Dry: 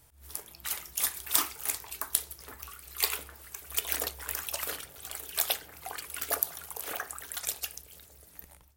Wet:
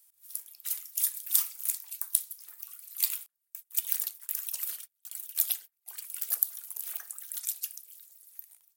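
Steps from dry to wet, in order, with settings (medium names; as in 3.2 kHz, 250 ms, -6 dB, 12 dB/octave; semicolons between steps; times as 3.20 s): differentiator; 3.26–5.88 s: gate -40 dBFS, range -32 dB; trim -1.5 dB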